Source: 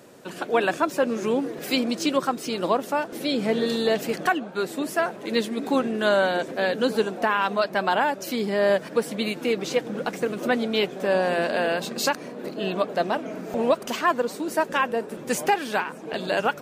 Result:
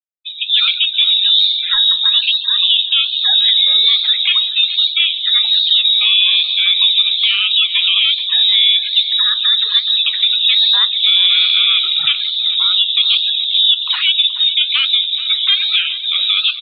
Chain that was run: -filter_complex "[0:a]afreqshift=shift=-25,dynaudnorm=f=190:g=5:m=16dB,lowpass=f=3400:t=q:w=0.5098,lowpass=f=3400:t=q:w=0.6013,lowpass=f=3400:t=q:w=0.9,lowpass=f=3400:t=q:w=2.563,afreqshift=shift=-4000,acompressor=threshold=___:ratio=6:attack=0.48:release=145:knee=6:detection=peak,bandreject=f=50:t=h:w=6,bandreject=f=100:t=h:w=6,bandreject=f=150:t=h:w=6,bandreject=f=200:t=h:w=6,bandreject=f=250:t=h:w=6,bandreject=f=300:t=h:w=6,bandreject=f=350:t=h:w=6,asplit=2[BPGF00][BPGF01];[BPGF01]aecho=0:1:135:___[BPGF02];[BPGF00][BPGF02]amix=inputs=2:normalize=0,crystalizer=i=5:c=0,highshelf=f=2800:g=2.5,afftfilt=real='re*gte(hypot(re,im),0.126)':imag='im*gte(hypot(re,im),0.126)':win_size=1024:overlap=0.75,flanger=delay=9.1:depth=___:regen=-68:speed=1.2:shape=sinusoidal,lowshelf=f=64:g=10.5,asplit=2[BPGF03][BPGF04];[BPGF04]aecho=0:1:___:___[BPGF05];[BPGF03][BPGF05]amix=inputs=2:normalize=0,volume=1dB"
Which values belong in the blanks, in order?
-14dB, 0.133, 7.1, 427, 0.178